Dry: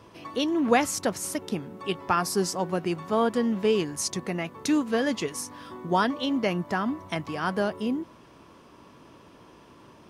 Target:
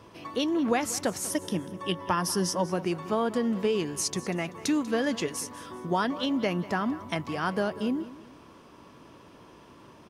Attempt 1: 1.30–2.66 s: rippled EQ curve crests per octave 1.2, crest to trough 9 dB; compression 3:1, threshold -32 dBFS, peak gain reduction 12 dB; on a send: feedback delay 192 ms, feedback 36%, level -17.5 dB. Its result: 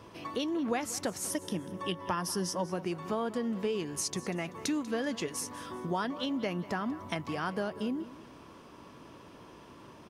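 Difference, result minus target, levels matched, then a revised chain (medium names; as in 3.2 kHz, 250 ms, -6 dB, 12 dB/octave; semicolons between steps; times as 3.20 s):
compression: peak gain reduction +6 dB
1.30–2.66 s: rippled EQ curve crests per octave 1.2, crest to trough 9 dB; compression 3:1, threshold -23 dBFS, peak gain reduction 6 dB; on a send: feedback delay 192 ms, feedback 36%, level -17.5 dB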